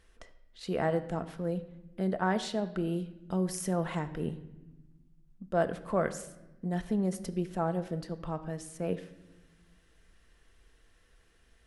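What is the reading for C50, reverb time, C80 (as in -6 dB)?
13.5 dB, 1.0 s, 15.5 dB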